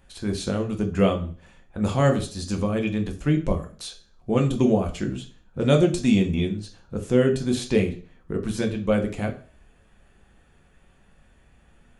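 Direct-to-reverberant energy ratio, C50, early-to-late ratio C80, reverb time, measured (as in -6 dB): 2.5 dB, 12.5 dB, 17.5 dB, 0.40 s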